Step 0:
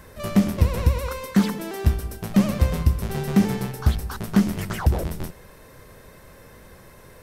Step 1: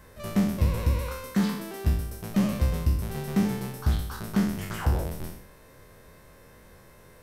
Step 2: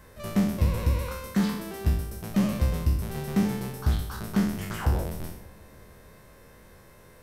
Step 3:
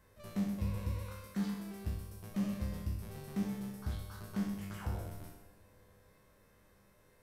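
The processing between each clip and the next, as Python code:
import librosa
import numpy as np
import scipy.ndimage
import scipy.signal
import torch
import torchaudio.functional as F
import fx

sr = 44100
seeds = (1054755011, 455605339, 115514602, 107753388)

y1 = fx.spec_trails(x, sr, decay_s=0.71)
y1 = y1 * 10.0 ** (-7.5 / 20.0)
y2 = fx.echo_bbd(y1, sr, ms=148, stages=1024, feedback_pct=76, wet_db=-21.5)
y3 = fx.comb_fb(y2, sr, f0_hz=100.0, decay_s=1.3, harmonics='all', damping=0.0, mix_pct=80)
y3 = y3 * 10.0 ** (-2.0 / 20.0)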